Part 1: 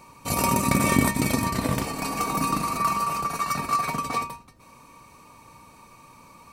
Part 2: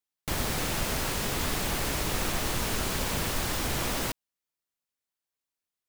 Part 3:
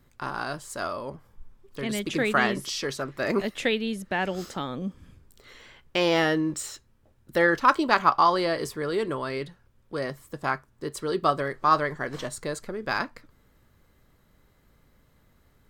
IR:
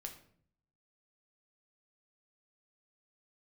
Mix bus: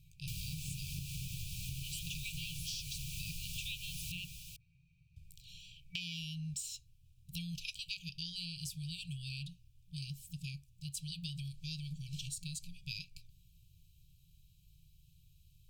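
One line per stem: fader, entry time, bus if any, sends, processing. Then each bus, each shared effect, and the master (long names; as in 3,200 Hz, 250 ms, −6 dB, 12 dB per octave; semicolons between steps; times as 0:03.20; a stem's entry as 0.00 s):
−10.5 dB, 0.00 s, send −6 dB, no echo send, low-pass filter 1,500 Hz 12 dB per octave
−7.5 dB, 0.00 s, no send, echo send −10.5 dB, no processing
−0.5 dB, 0.00 s, muted 0:04.25–0:05.16, no send, no echo send, notch filter 2,200 Hz, Q 5.3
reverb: on, RT60 0.60 s, pre-delay 6 ms
echo: single-tap delay 444 ms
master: brick-wall band-stop 180–2,300 Hz; downward compressor 10 to 1, threshold −38 dBFS, peak gain reduction 12 dB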